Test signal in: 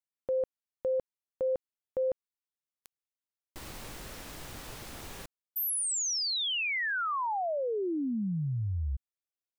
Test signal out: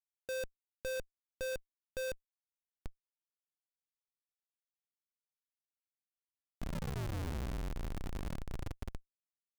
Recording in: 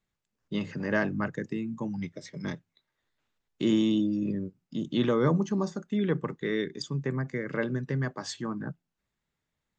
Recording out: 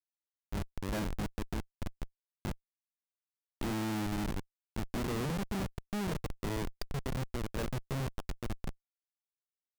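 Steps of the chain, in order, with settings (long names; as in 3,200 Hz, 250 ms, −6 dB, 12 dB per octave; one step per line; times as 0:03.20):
echo with a time of its own for lows and highs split 380 Hz, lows 124 ms, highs 520 ms, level −15.5 dB
comparator with hysteresis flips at −26.5 dBFS
level −3 dB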